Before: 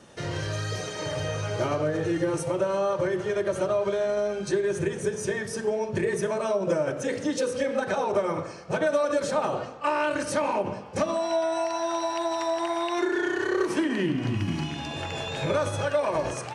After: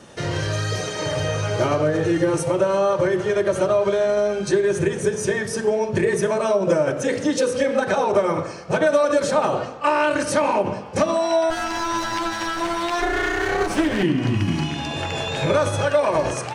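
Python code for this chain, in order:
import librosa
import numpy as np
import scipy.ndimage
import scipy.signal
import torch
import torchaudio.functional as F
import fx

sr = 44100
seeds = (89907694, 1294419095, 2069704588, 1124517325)

y = fx.lower_of_two(x, sr, delay_ms=9.8, at=(11.5, 14.03))
y = y * 10.0 ** (6.5 / 20.0)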